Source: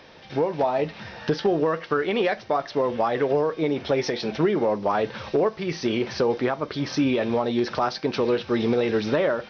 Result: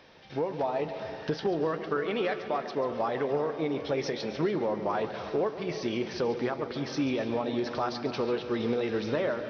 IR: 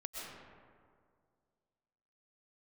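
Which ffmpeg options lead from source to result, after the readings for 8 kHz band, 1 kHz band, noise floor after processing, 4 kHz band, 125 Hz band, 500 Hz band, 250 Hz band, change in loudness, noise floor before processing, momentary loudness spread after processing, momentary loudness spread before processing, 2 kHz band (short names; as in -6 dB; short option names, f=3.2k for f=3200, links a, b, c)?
n/a, -6.5 dB, -41 dBFS, -6.5 dB, -6.5 dB, -6.5 dB, -6.5 dB, -6.5 dB, -45 dBFS, 4 LU, 4 LU, -6.5 dB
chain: -filter_complex "[0:a]asplit=2[a][b];[1:a]atrim=start_sample=2205,adelay=140[c];[b][c]afir=irnorm=-1:irlink=0,volume=-8dB[d];[a][d]amix=inputs=2:normalize=0,volume=-7dB"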